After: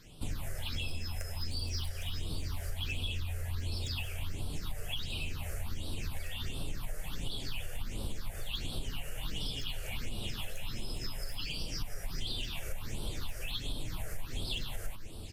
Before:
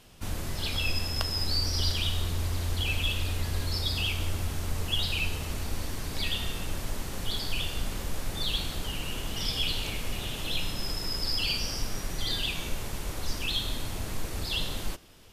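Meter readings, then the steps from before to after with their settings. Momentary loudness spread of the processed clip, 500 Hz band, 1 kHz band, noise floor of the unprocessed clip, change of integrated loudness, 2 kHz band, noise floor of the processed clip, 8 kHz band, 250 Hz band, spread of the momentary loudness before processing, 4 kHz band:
5 LU, -8.0 dB, -10.0 dB, -37 dBFS, -8.5 dB, -9.0 dB, -42 dBFS, -8.5 dB, -7.0 dB, 8 LU, -9.5 dB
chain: one-sided wavefolder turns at -22 dBFS; delay 814 ms -12 dB; flange 0.43 Hz, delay 6.3 ms, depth 3.2 ms, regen -43%; compression, threshold -37 dBFS, peak gain reduction 11.5 dB; phase shifter stages 6, 1.4 Hz, lowest notch 250–1900 Hz; trim +5 dB

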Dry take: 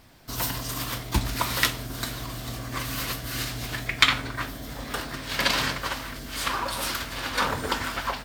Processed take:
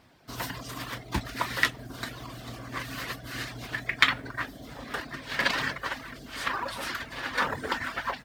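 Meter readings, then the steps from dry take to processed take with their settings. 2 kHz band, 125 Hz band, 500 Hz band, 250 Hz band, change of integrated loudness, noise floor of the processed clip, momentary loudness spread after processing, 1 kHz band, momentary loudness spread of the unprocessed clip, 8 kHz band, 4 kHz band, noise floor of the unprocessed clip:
-0.5 dB, -7.0 dB, -3.5 dB, -4.5 dB, -3.5 dB, -47 dBFS, 12 LU, -3.0 dB, 11 LU, -10.5 dB, -6.0 dB, -38 dBFS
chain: dynamic bell 1.8 kHz, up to +7 dB, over -45 dBFS, Q 4.1; low-pass 3.3 kHz 6 dB/octave; reverb removal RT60 0.53 s; in parallel at -10 dB: short-mantissa float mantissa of 2-bit; on the sum: high-pass 120 Hz 6 dB/octave; trim -4.5 dB

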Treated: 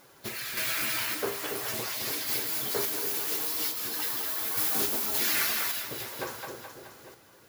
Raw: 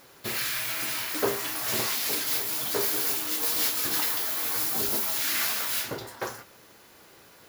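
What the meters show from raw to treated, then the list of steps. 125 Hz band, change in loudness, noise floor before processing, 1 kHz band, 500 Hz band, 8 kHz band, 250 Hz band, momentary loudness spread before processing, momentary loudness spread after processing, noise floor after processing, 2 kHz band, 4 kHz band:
-2.5 dB, -2.5 dB, -54 dBFS, -2.5 dB, -2.5 dB, -3.0 dB, -2.5 dB, 7 LU, 12 LU, -57 dBFS, -1.0 dB, -2.5 dB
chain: coarse spectral quantiser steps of 15 dB; two-band feedback delay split 540 Hz, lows 280 ms, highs 212 ms, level -5.5 dB; random-step tremolo

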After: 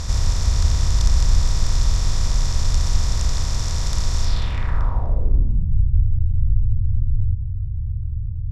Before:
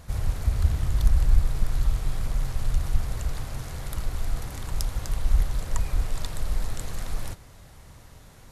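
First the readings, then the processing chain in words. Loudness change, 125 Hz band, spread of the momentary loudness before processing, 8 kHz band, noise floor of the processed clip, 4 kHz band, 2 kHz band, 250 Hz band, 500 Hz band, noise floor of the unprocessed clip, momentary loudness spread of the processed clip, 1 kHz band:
+7.0 dB, +8.5 dB, 11 LU, +10.0 dB, -25 dBFS, +11.5 dB, +5.0 dB, +6.0 dB, +4.0 dB, -49 dBFS, 6 LU, +6.0 dB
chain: spectral levelling over time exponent 0.4; low-pass sweep 6.1 kHz -> 110 Hz, 4.21–5.81 s

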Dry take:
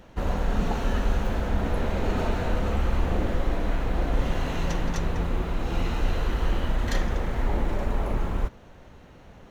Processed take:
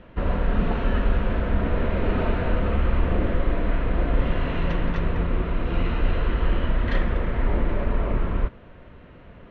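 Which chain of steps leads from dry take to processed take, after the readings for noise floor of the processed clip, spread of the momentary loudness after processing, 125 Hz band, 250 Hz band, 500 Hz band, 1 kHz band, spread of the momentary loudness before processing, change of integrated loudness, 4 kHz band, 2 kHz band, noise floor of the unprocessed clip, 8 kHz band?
-47 dBFS, 2 LU, +3.0 dB, +3.0 dB, +2.5 dB, +0.5 dB, 2 LU, +2.5 dB, -1.5 dB, +3.0 dB, -49 dBFS, no reading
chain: low-pass 3.1 kHz 24 dB/octave; band-stop 810 Hz, Q 5.2; trim +3 dB

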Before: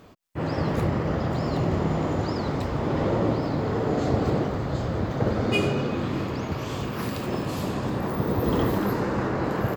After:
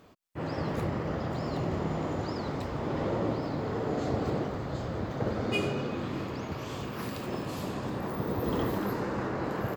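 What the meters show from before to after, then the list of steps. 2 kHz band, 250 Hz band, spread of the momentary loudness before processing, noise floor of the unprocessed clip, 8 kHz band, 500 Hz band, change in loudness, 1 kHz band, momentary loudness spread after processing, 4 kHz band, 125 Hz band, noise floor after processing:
-5.5 dB, -6.5 dB, 6 LU, -31 dBFS, -5.5 dB, -6.0 dB, -6.5 dB, -5.5 dB, 6 LU, -5.5 dB, -7.5 dB, -38 dBFS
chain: bass shelf 170 Hz -3.5 dB; trim -5.5 dB

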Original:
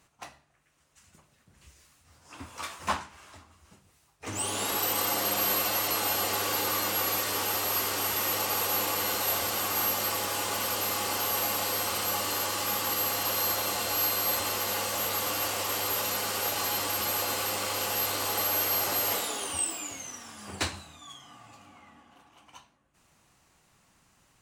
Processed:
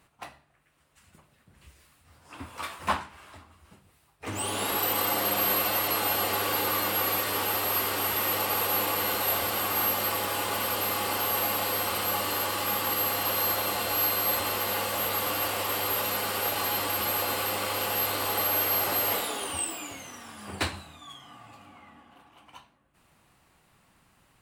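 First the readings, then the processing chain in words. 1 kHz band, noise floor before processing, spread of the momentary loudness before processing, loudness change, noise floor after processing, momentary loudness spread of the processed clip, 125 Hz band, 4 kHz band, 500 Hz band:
+2.5 dB, -66 dBFS, 9 LU, +1.0 dB, -65 dBFS, 9 LU, +2.5 dB, 0.0 dB, +2.5 dB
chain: peaking EQ 6.3 kHz -10 dB 0.72 oct; trim +2.5 dB

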